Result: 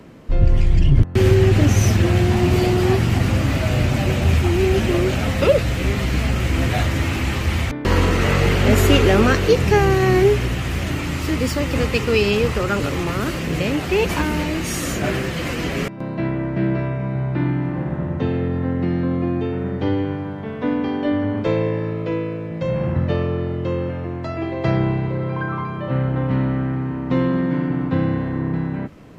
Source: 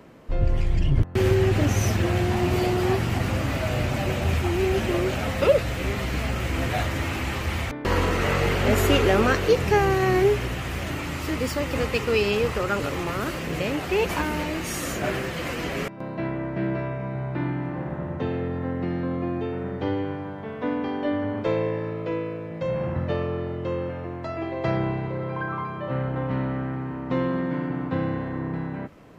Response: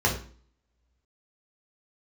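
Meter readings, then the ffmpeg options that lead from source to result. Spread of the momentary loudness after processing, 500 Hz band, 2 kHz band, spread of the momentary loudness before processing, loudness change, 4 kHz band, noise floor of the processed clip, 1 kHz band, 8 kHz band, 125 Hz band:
9 LU, +4.0 dB, +4.0 dB, 10 LU, +5.5 dB, +5.0 dB, −28 dBFS, +2.5 dB, +5.0 dB, +7.5 dB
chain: -filter_complex "[0:a]equalizer=frequency=5100:width=0.32:gain=4.5,acrossover=split=360[link_01][link_02];[link_01]acontrast=79[link_03];[link_03][link_02]amix=inputs=2:normalize=0,volume=1dB"

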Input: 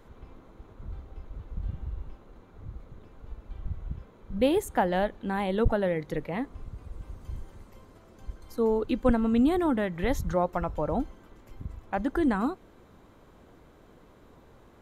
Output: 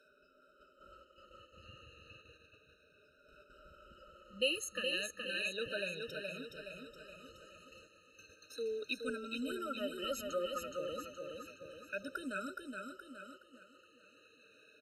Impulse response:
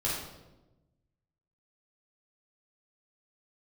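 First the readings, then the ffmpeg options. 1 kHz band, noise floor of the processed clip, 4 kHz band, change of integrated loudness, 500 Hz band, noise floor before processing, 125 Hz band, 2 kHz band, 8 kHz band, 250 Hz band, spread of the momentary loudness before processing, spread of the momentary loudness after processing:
−15.5 dB, −68 dBFS, +4.5 dB, −11.5 dB, −12.0 dB, −55 dBFS, −23.5 dB, −2.5 dB, +0.5 dB, −18.5 dB, 21 LU, 23 LU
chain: -filter_complex "[0:a]afftfilt=real='re*pow(10,18/40*sin(2*PI*(1.6*log(max(b,1)*sr/1024/100)/log(2)-(-0.33)*(pts-256)/sr)))':imag='im*pow(10,18/40*sin(2*PI*(1.6*log(max(b,1)*sr/1024/100)/log(2)-(-0.33)*(pts-256)/sr)))':win_size=1024:overlap=0.75,acrossover=split=260|3000[link_01][link_02][link_03];[link_02]acompressor=threshold=-49dB:ratio=1.5[link_04];[link_01][link_04][link_03]amix=inputs=3:normalize=0,highshelf=frequency=4000:gain=9,aecho=1:1:420|840|1260|1680|2100|2520:0.596|0.292|0.143|0.0701|0.0343|0.0168,areverse,acompressor=mode=upward:threshold=-41dB:ratio=2.5,areverse,tiltshelf=frequency=1100:gain=-9.5,agate=range=-6dB:threshold=-45dB:ratio=16:detection=peak,asplit=3[link_05][link_06][link_07];[link_05]bandpass=frequency=730:width_type=q:width=8,volume=0dB[link_08];[link_06]bandpass=frequency=1090:width_type=q:width=8,volume=-6dB[link_09];[link_07]bandpass=frequency=2440:width_type=q:width=8,volume=-9dB[link_10];[link_08][link_09][link_10]amix=inputs=3:normalize=0,afftfilt=real='re*eq(mod(floor(b*sr/1024/620),2),0)':imag='im*eq(mod(floor(b*sr/1024/620),2),0)':win_size=1024:overlap=0.75,volume=11.5dB"

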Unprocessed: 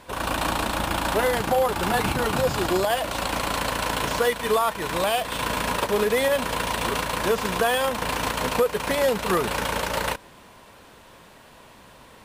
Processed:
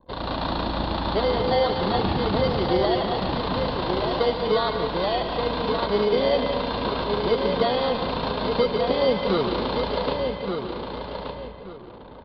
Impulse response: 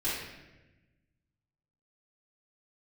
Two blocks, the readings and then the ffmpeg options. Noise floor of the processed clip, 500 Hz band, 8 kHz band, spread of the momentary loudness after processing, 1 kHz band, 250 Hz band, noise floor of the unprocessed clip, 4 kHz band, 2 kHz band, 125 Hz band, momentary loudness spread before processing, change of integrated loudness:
−40 dBFS, +2.0 dB, below −30 dB, 10 LU, −1.0 dB, +3.5 dB, −49 dBFS, 0.0 dB, −6.5 dB, +2.5 dB, 4 LU, 0.0 dB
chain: -filter_complex "[0:a]aemphasis=mode=reproduction:type=75fm,acrossover=split=380|2300[link_01][link_02][link_03];[link_02]acrusher=samples=17:mix=1:aa=0.000001[link_04];[link_01][link_04][link_03]amix=inputs=3:normalize=0,equalizer=frequency=1700:width_type=o:width=0.63:gain=-10,asplit=2[link_05][link_06];[link_06]adelay=1177,lowpass=frequency=4100:poles=1,volume=-5.5dB,asplit=2[link_07][link_08];[link_08]adelay=1177,lowpass=frequency=4100:poles=1,volume=0.26,asplit=2[link_09][link_10];[link_10]adelay=1177,lowpass=frequency=4100:poles=1,volume=0.26[link_11];[link_05][link_07][link_09][link_11]amix=inputs=4:normalize=0,asplit=2[link_12][link_13];[1:a]atrim=start_sample=2205,adelay=127[link_14];[link_13][link_14]afir=irnorm=-1:irlink=0,volume=-13dB[link_15];[link_12][link_15]amix=inputs=2:normalize=0,anlmdn=0.0398,aresample=11025,aresample=44100"

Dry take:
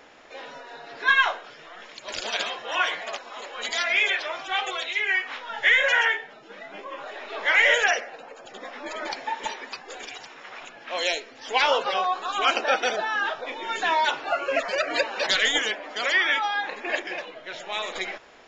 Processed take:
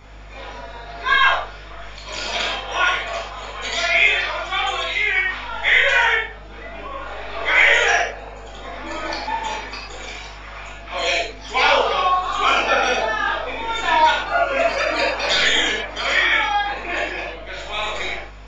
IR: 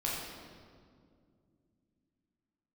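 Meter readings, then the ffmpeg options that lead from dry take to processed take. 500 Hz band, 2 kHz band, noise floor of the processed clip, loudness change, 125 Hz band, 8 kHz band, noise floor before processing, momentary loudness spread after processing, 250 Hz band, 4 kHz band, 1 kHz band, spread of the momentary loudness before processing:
+5.5 dB, +5.0 dB, −37 dBFS, +5.5 dB, can't be measured, +4.5 dB, −47 dBFS, 19 LU, +6.0 dB, +5.0 dB, +6.5 dB, 21 LU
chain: -filter_complex "[0:a]aeval=exprs='val(0)+0.00355*(sin(2*PI*50*n/s)+sin(2*PI*2*50*n/s)/2+sin(2*PI*3*50*n/s)/3+sin(2*PI*4*50*n/s)/4+sin(2*PI*5*50*n/s)/5)':channel_layout=same[link_01];[1:a]atrim=start_sample=2205,atrim=end_sample=6174[link_02];[link_01][link_02]afir=irnorm=-1:irlink=0,volume=1.5dB"

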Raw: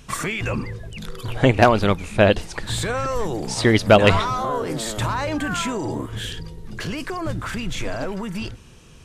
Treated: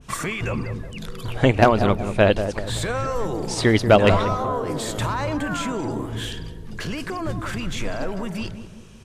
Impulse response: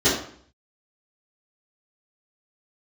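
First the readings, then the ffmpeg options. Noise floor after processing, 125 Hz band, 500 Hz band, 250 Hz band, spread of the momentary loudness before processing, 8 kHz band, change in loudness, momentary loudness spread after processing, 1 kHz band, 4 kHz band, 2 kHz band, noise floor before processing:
−39 dBFS, −0.5 dB, −0.5 dB, −0.5 dB, 17 LU, −2.0 dB, −1.0 dB, 16 LU, −1.0 dB, −2.5 dB, −2.0 dB, −45 dBFS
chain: -filter_complex "[0:a]asplit=2[link_01][link_02];[link_02]adelay=187,lowpass=frequency=1000:poles=1,volume=-8dB,asplit=2[link_03][link_04];[link_04]adelay=187,lowpass=frequency=1000:poles=1,volume=0.48,asplit=2[link_05][link_06];[link_06]adelay=187,lowpass=frequency=1000:poles=1,volume=0.48,asplit=2[link_07][link_08];[link_08]adelay=187,lowpass=frequency=1000:poles=1,volume=0.48,asplit=2[link_09][link_10];[link_10]adelay=187,lowpass=frequency=1000:poles=1,volume=0.48,asplit=2[link_11][link_12];[link_12]adelay=187,lowpass=frequency=1000:poles=1,volume=0.48[link_13];[link_01][link_03][link_05][link_07][link_09][link_11][link_13]amix=inputs=7:normalize=0,adynamicequalizer=threshold=0.0282:dfrequency=1500:dqfactor=0.7:tfrequency=1500:tqfactor=0.7:attack=5:release=100:ratio=0.375:range=3:mode=cutabove:tftype=highshelf,volume=-1dB"

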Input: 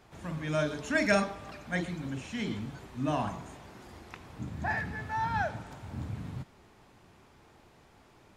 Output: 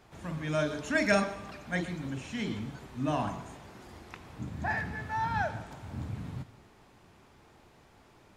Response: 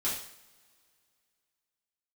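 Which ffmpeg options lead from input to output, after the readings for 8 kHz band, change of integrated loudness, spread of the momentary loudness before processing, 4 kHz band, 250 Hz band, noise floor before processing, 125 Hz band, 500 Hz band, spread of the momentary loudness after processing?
0.0 dB, 0.0 dB, 19 LU, 0.0 dB, 0.0 dB, −60 dBFS, 0.0 dB, 0.0 dB, 19 LU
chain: -filter_complex "[0:a]asplit=2[link_01][link_02];[1:a]atrim=start_sample=2205,adelay=120[link_03];[link_02][link_03]afir=irnorm=-1:irlink=0,volume=-23dB[link_04];[link_01][link_04]amix=inputs=2:normalize=0"

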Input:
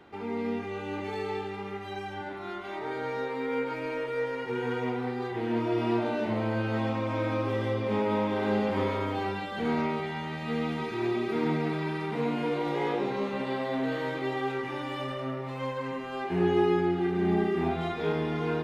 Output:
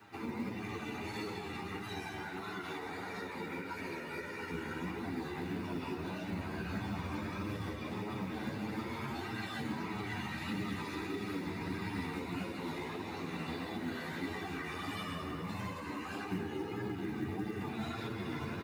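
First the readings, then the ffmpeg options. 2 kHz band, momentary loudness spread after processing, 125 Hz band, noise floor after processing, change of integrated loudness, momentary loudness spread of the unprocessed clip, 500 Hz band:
−5.5 dB, 3 LU, −7.5 dB, −43 dBFS, −9.5 dB, 8 LU, −14.5 dB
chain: -filter_complex "[0:a]afftfilt=real='hypot(re,im)*cos(2*PI*random(0))':imag='hypot(re,im)*sin(2*PI*random(1))':win_size=512:overlap=0.75,acompressor=threshold=-39dB:ratio=4,asplit=8[link_01][link_02][link_03][link_04][link_05][link_06][link_07][link_08];[link_02]adelay=199,afreqshift=-53,volume=-13dB[link_09];[link_03]adelay=398,afreqshift=-106,volume=-16.9dB[link_10];[link_04]adelay=597,afreqshift=-159,volume=-20.8dB[link_11];[link_05]adelay=796,afreqshift=-212,volume=-24.6dB[link_12];[link_06]adelay=995,afreqshift=-265,volume=-28.5dB[link_13];[link_07]adelay=1194,afreqshift=-318,volume=-32.4dB[link_14];[link_08]adelay=1393,afreqshift=-371,volume=-36.3dB[link_15];[link_01][link_09][link_10][link_11][link_12][link_13][link_14][link_15]amix=inputs=8:normalize=0,flanger=delay=8.7:depth=3.4:regen=-2:speed=0.11:shape=triangular,aemphasis=mode=production:type=50kf,flanger=delay=9.4:depth=4.1:regen=-7:speed=1.6:shape=sinusoidal,acrossover=split=380|3000[link_16][link_17][link_18];[link_17]acompressor=threshold=-49dB:ratio=6[link_19];[link_16][link_19][link_18]amix=inputs=3:normalize=0,highpass=84,equalizer=frequency=540:width=1.9:gain=-11.5,acrusher=bits=8:mode=log:mix=0:aa=0.000001,bandreject=frequency=3200:width=7.4,volume=11.5dB"

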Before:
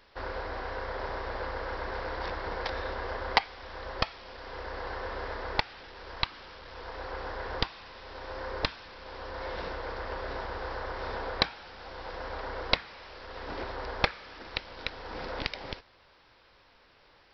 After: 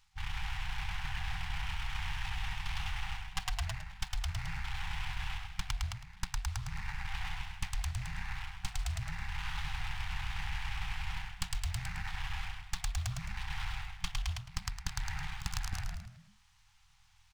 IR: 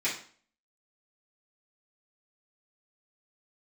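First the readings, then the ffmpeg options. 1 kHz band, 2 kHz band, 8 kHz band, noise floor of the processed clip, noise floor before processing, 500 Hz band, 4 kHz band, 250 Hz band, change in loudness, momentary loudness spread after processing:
−9.5 dB, −5.0 dB, can't be measured, −64 dBFS, −61 dBFS, −27.5 dB, −5.5 dB, −8.0 dB, −4.5 dB, 3 LU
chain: -filter_complex "[0:a]afwtdn=0.00891,acrossover=split=620[link_01][link_02];[link_02]aeval=exprs='abs(val(0))':channel_layout=same[link_03];[link_01][link_03]amix=inputs=2:normalize=0,afftfilt=real='re*(1-between(b*sr/4096,180,770))':imag='im*(1-between(b*sr/4096,180,770))':win_size=4096:overlap=0.75,asplit=6[link_04][link_05][link_06][link_07][link_08][link_09];[link_05]adelay=108,afreqshift=-42,volume=-3.5dB[link_10];[link_06]adelay=216,afreqshift=-84,volume=-11.5dB[link_11];[link_07]adelay=324,afreqshift=-126,volume=-19.4dB[link_12];[link_08]adelay=432,afreqshift=-168,volume=-27.4dB[link_13];[link_09]adelay=540,afreqshift=-210,volume=-35.3dB[link_14];[link_04][link_10][link_11][link_12][link_13][link_14]amix=inputs=6:normalize=0,areverse,acompressor=threshold=-44dB:ratio=10,areverse,volume=12dB"

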